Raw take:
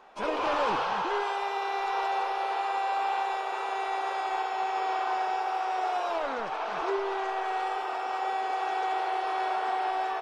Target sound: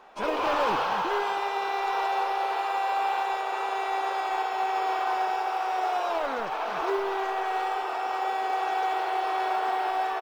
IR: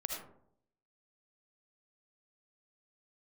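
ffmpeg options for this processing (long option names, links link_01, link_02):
-af "acrusher=bits=9:mode=log:mix=0:aa=0.000001,aecho=1:1:317|634|951|1268|1585:0.126|0.068|0.0367|0.0198|0.0107,volume=2dB"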